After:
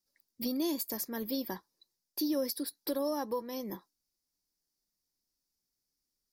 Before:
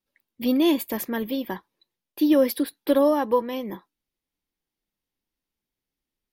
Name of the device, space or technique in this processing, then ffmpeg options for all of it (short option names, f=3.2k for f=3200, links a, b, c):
over-bright horn tweeter: -af "highshelf=f=3.9k:t=q:w=3:g=9,alimiter=limit=-18dB:level=0:latency=1:release=402,volume=-6dB"